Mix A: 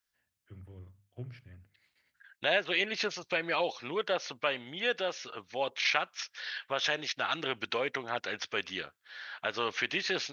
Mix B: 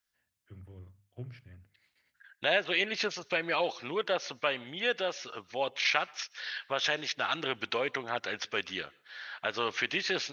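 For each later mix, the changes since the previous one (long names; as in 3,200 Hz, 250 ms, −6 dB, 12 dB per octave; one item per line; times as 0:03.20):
reverb: on, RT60 0.35 s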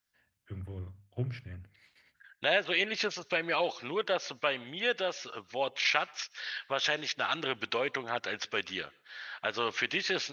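first voice +8.5 dB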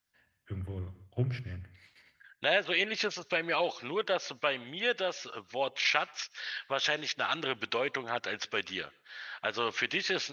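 first voice: send on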